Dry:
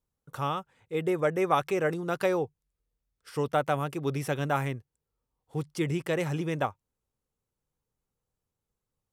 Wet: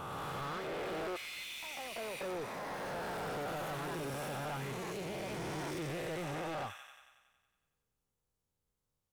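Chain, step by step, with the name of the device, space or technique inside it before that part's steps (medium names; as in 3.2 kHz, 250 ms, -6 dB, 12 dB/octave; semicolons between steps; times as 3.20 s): reverse spectral sustain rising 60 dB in 2.62 s; 1.16–2.21 s: steep high-pass 2 kHz 96 dB/octave; feedback echo behind a high-pass 92 ms, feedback 64%, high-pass 2.9 kHz, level -4.5 dB; ever faster or slower copies 104 ms, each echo +3 st, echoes 3, each echo -6 dB; saturation between pre-emphasis and de-emphasis (treble shelf 4 kHz +10 dB; saturation -31 dBFS, distortion -5 dB; treble shelf 4 kHz -10 dB); trim -5.5 dB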